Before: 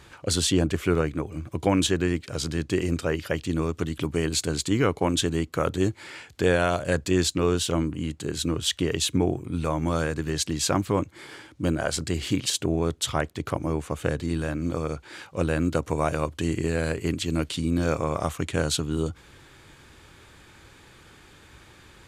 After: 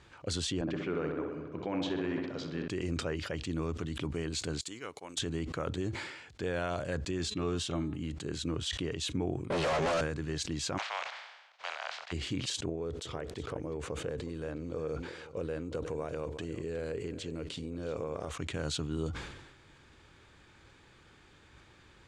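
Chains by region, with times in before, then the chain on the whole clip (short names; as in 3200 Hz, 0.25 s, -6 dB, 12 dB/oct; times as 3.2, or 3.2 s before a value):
0.61–2.68 BPF 170–6200 Hz + air absorption 110 m + darkening echo 64 ms, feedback 77%, low-pass 3300 Hz, level -7 dB
4.61–5.19 RIAA curve recording + overloaded stage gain 11 dB + upward expander 2.5:1, over -44 dBFS
7.19–8.02 notch comb 490 Hz + de-hum 211.3 Hz, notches 19
9.5–10.01 minimum comb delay 1.6 ms + notch comb 1200 Hz + overdrive pedal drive 35 dB, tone 6000 Hz, clips at -15 dBFS
10.77–12.11 spectral contrast lowered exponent 0.35 + elliptic band-pass 680–9400 Hz + air absorption 210 m
12.69–18.31 compressor 12:1, threshold -28 dBFS + bell 460 Hz +11 dB 0.53 oct + echo 0.364 s -16 dB
whole clip: Bessel low-pass 6400 Hz, order 4; limiter -16 dBFS; sustainer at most 52 dB/s; gain -8 dB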